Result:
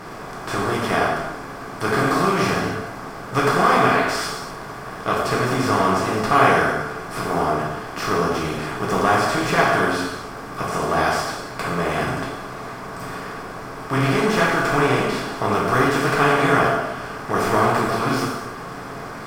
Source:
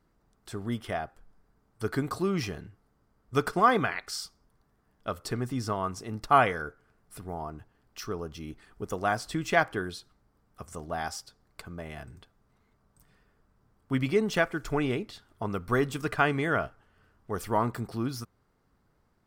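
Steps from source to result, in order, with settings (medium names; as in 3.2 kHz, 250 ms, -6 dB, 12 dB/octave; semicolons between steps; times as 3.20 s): spectral levelling over time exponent 0.4; gated-style reverb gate 330 ms falling, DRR -5.5 dB; trim -3 dB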